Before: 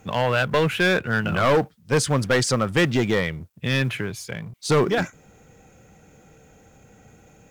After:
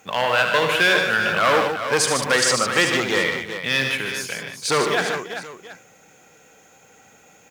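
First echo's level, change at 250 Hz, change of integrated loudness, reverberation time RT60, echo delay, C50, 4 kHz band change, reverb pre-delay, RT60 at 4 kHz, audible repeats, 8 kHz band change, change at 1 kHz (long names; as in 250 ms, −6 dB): −7.5 dB, −4.5 dB, +2.5 dB, no reverb audible, 74 ms, no reverb audible, +6.5 dB, no reverb audible, no reverb audible, 6, +7.0 dB, +4.5 dB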